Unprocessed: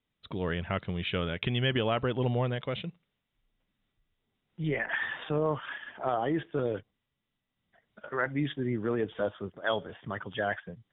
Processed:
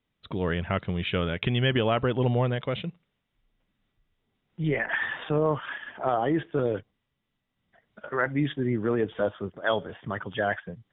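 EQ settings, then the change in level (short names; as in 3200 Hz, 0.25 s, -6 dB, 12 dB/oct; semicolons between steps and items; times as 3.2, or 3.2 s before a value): air absorption 120 m; +4.5 dB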